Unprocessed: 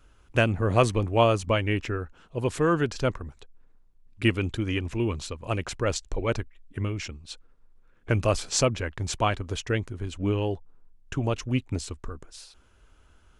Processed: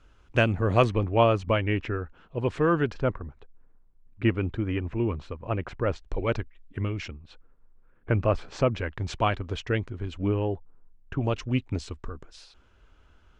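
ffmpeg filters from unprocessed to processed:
-af "asetnsamples=n=441:p=0,asendcmd='0.84 lowpass f 3000;2.94 lowpass f 1800;6.09 lowpass f 3900;7.11 lowpass f 1900;8.71 lowpass f 3700;10.28 lowpass f 1900;11.21 lowpass f 4600',lowpass=5.8k"

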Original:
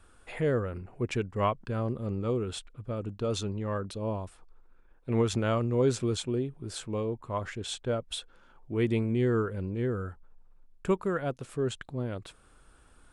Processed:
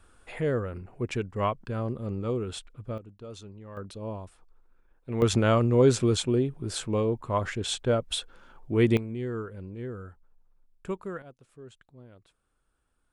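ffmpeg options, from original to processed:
-af "asetnsamples=n=441:p=0,asendcmd='2.98 volume volume -12dB;3.77 volume volume -3.5dB;5.22 volume volume 5.5dB;8.97 volume volume -6.5dB;11.22 volume volume -17dB',volume=0dB"

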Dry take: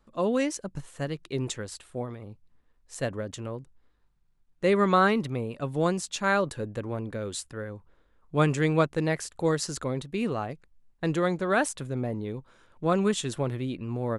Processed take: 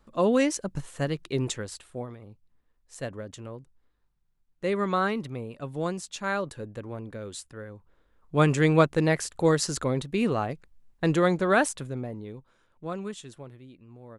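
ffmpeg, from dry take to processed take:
-af "volume=11.5dB,afade=t=out:st=1.21:d=1:silence=0.398107,afade=t=in:st=7.74:d=0.96:silence=0.398107,afade=t=out:st=11.47:d=0.61:silence=0.375837,afade=t=out:st=12.08:d=1.51:silence=0.251189"

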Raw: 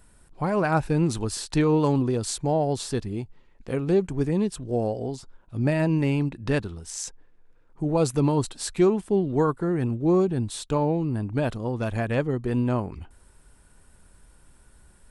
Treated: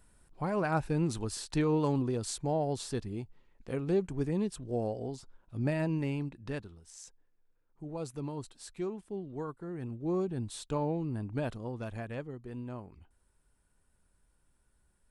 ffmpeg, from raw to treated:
-af "volume=0.5dB,afade=t=out:st=5.63:d=1.19:silence=0.354813,afade=t=in:st=9.61:d=0.95:silence=0.398107,afade=t=out:st=11.38:d=0.97:silence=0.375837"

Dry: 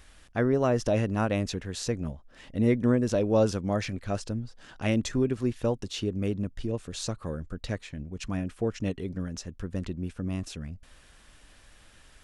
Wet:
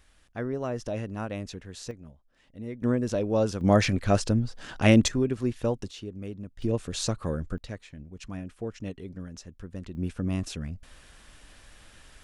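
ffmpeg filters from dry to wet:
-af "asetnsamples=n=441:p=0,asendcmd='1.91 volume volume -14dB;2.82 volume volume -2dB;3.61 volume volume 8dB;5.08 volume volume 0dB;5.91 volume volume -8.5dB;6.62 volume volume 4dB;7.58 volume volume -6dB;9.95 volume volume 3dB',volume=-7dB"

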